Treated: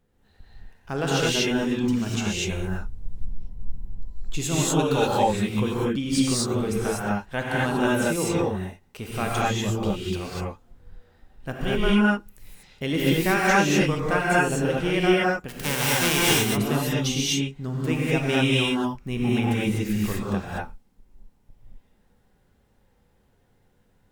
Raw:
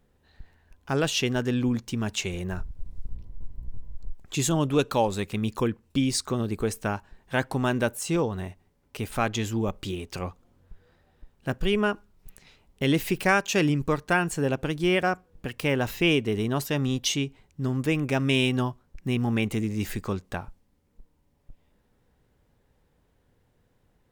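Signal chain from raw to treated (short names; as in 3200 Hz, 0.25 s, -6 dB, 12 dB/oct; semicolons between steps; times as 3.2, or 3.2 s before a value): 15.48–16.3 spectral whitening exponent 0.3; non-linear reverb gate 0.27 s rising, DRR -6.5 dB; gain -4 dB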